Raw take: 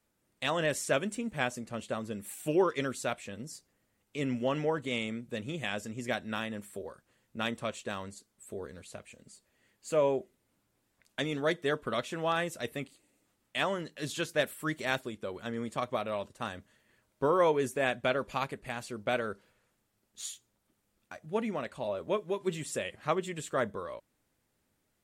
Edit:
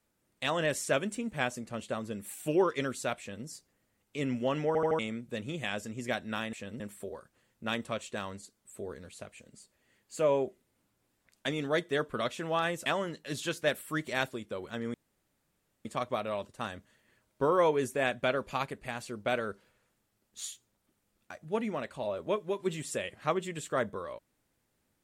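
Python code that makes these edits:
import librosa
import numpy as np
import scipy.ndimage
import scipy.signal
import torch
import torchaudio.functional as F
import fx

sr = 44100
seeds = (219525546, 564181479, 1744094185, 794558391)

y = fx.edit(x, sr, fx.duplicate(start_s=3.19, length_s=0.27, to_s=6.53),
    fx.stutter_over(start_s=4.67, slice_s=0.08, count=4),
    fx.cut(start_s=12.59, length_s=0.99),
    fx.insert_room_tone(at_s=15.66, length_s=0.91), tone=tone)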